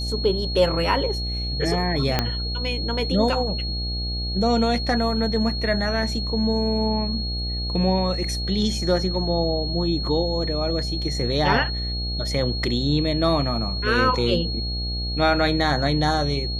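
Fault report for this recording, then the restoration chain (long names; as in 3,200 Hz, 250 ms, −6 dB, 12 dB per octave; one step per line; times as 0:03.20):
mains buzz 60 Hz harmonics 14 −28 dBFS
whistle 4,300 Hz −29 dBFS
0:02.19: click −5 dBFS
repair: click removal
notch filter 4,300 Hz, Q 30
hum removal 60 Hz, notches 14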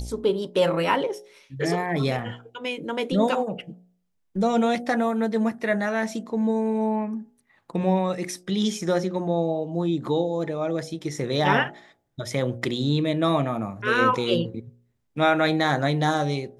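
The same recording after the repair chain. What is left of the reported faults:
0:02.19: click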